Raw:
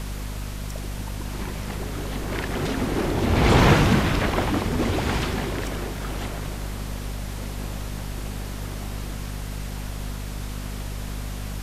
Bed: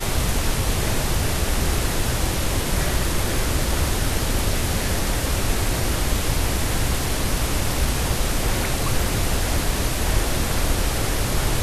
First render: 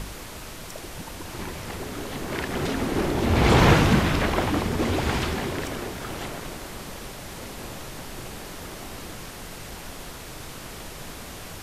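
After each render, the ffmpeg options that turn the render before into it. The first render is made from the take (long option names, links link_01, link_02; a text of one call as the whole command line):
ffmpeg -i in.wav -af "bandreject=frequency=50:width_type=h:width=4,bandreject=frequency=100:width_type=h:width=4,bandreject=frequency=150:width_type=h:width=4,bandreject=frequency=200:width_type=h:width=4,bandreject=frequency=250:width_type=h:width=4" out.wav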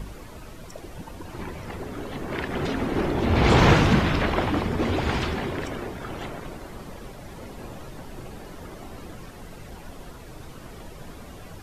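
ffmpeg -i in.wav -af "afftdn=noise_reduction=11:noise_floor=-39" out.wav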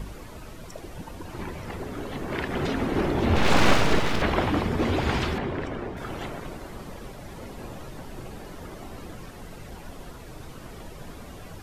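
ffmpeg -i in.wav -filter_complex "[0:a]asettb=1/sr,asplit=3[link_01][link_02][link_03];[link_01]atrim=end=3.364[link_04];[link_02]atrim=start=3.36:end=4.22,asetpts=PTS-STARTPTS,afade=type=in:duration=0.004:curve=qsin,afade=type=out:start_time=0.856:duration=0.004:curve=qsin,aeval=exprs='abs(val(0))':channel_layout=same[link_05];[link_03]atrim=start=4.216[link_06];[link_04][link_05]acrossfade=duration=0.004:curve1=hsin:curve2=qsin[link_07];[link_07][link_06]acrossfade=duration=0.004:curve1=qsin:curve2=hsin,asettb=1/sr,asplit=3[link_08][link_09][link_10];[link_08]atrim=end=5.384[link_11];[link_09]atrim=start=5.38:end=5.97,asetpts=PTS-STARTPTS,afade=type=in:duration=0.004:curve=qsin,afade=type=out:start_time=0.586:duration=0.004:curve=qsin,aemphasis=mode=reproduction:type=75kf[link_12];[link_10]atrim=start=5.966[link_13];[link_11][link_12]acrossfade=duration=0.004:curve1=hsin:curve2=qsin[link_14];[link_14][link_13]acrossfade=duration=0.004:curve1=qsin:curve2=hsin" out.wav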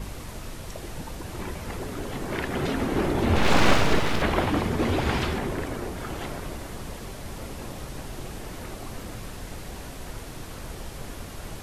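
ffmpeg -i in.wav -i bed.wav -filter_complex "[1:a]volume=-18.5dB[link_01];[0:a][link_01]amix=inputs=2:normalize=0" out.wav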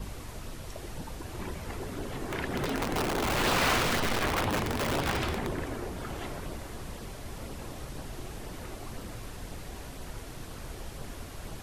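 ffmpeg -i in.wav -filter_complex "[0:a]acrossover=split=740|1200[link_01][link_02][link_03];[link_01]aeval=exprs='(mod(10*val(0)+1,2)-1)/10':channel_layout=same[link_04];[link_04][link_02][link_03]amix=inputs=3:normalize=0,flanger=delay=0.2:depth=2.8:regen=-61:speed=2:shape=sinusoidal" out.wav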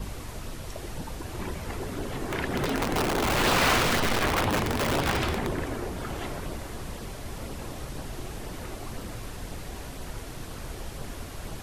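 ffmpeg -i in.wav -af "volume=3.5dB" out.wav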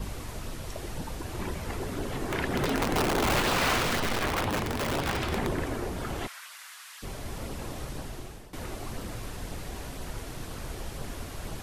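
ffmpeg -i in.wav -filter_complex "[0:a]asplit=3[link_01][link_02][link_03];[link_01]afade=type=out:start_time=6.26:duration=0.02[link_04];[link_02]highpass=frequency=1300:width=0.5412,highpass=frequency=1300:width=1.3066,afade=type=in:start_time=6.26:duration=0.02,afade=type=out:start_time=7.02:duration=0.02[link_05];[link_03]afade=type=in:start_time=7.02:duration=0.02[link_06];[link_04][link_05][link_06]amix=inputs=3:normalize=0,asplit=4[link_07][link_08][link_09][link_10];[link_07]atrim=end=3.402[link_11];[link_08]atrim=start=3.398:end=5.322,asetpts=PTS-STARTPTS,volume=-3.5dB[link_12];[link_09]atrim=start=5.318:end=8.53,asetpts=PTS-STARTPTS,afade=type=out:start_time=2.422:duration=0.79:curve=qsin:silence=0.141254[link_13];[link_10]atrim=start=8.53,asetpts=PTS-STARTPTS,afade=type=in:duration=0.004:curve=hsin:silence=0.141254[link_14];[link_11][link_12]acrossfade=duration=0.004:curve1=hsin:curve2=hsin[link_15];[link_13][link_14]concat=n=2:v=0:a=1[link_16];[link_15][link_16]acrossfade=duration=0.004:curve1=hsin:curve2=hsin" out.wav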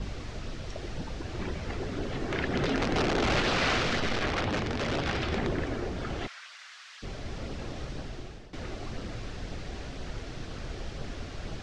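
ffmpeg -i in.wav -af "lowpass=frequency=5900:width=0.5412,lowpass=frequency=5900:width=1.3066,equalizer=frequency=970:width=3.2:gain=-6" out.wav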